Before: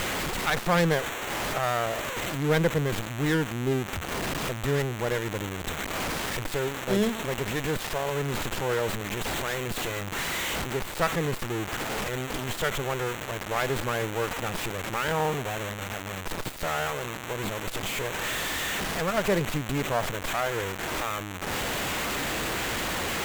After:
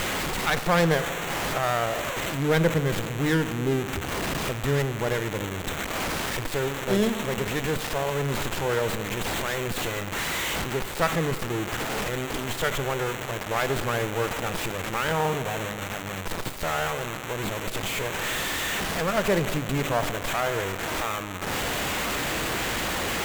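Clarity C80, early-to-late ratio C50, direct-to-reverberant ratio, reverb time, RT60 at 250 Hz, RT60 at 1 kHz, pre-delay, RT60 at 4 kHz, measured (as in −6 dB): 13.0 dB, 12.0 dB, 11.0 dB, 2.2 s, 2.6 s, 2.1 s, 15 ms, 1.2 s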